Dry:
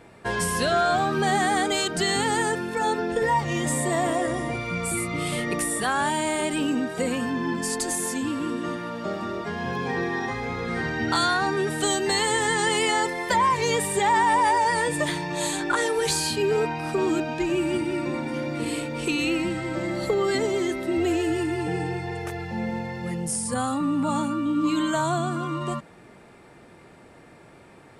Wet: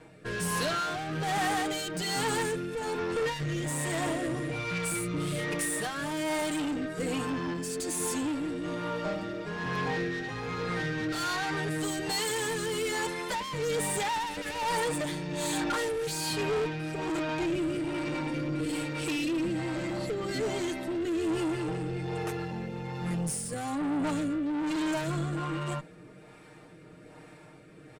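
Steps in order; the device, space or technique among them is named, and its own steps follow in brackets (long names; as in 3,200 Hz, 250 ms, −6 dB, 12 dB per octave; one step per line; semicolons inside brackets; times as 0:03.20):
comb filter 6.5 ms, depth 76%
overdriven rotary cabinet (tube saturation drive 26 dB, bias 0.4; rotating-speaker cabinet horn 1.2 Hz)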